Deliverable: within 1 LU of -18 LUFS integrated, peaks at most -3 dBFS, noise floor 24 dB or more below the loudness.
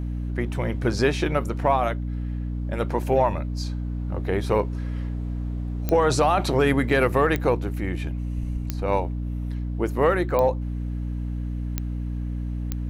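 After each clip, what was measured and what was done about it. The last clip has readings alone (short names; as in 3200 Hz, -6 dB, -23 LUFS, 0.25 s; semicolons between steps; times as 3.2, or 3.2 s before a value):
clicks 6; hum 60 Hz; harmonics up to 300 Hz; hum level -26 dBFS; loudness -25.0 LUFS; peak -6.0 dBFS; loudness target -18.0 LUFS
-> de-click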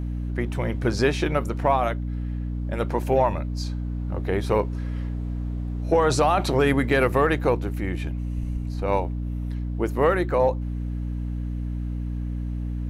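clicks 0; hum 60 Hz; harmonics up to 300 Hz; hum level -26 dBFS
-> de-hum 60 Hz, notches 5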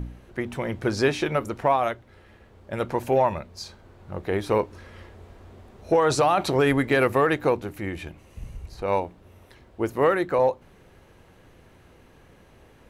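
hum none; loudness -24.5 LUFS; peak -10.0 dBFS; loudness target -18.0 LUFS
-> gain +6.5 dB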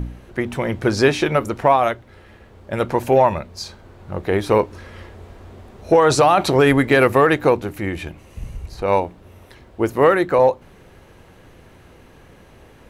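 loudness -18.0 LUFS; peak -3.5 dBFS; noise floor -48 dBFS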